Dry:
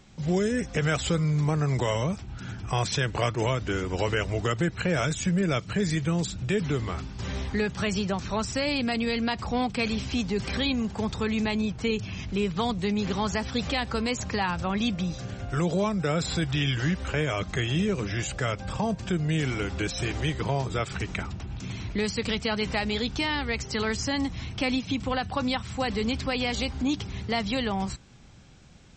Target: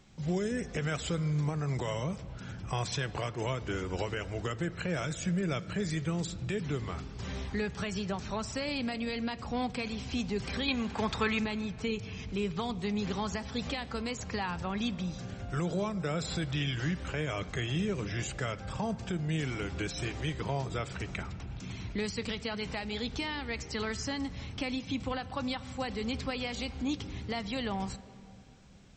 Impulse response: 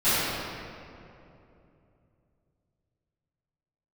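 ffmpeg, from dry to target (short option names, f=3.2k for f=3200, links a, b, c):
-filter_complex "[0:a]alimiter=limit=-17.5dB:level=0:latency=1:release=379,asettb=1/sr,asplit=3[a][b][c];[a]atrim=end=10.684[d];[b]atrim=start=10.68:end=11.39,asetpts=PTS-STARTPTS,afade=t=in:d=0.004:c=qsin,afade=t=out:st=0.706:d=0.004:c=qsin,equalizer=f=1.7k:w=0.41:g=10.5[e];[c]atrim=start=11.386[f];[d][e]acrossfade=d=0.004:c1=hsin:c2=qsin[g];[g][f]acrossfade=d=0.004:c1=qsin:c2=hsin,asplit=2[h][i];[1:a]atrim=start_sample=2205,lowpass=5.9k[j];[i][j]afir=irnorm=-1:irlink=0,volume=-33dB[k];[h][k]amix=inputs=2:normalize=0,volume=-5.5dB"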